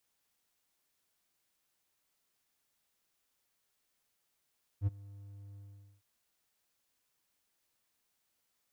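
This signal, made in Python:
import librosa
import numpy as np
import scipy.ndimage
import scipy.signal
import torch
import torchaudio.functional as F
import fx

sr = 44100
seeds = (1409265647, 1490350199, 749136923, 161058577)

y = fx.adsr_tone(sr, wave='triangle', hz=100.0, attack_ms=59.0, decay_ms=24.0, sustain_db=-22.5, held_s=0.76, release_ms=451.0, level_db=-23.0)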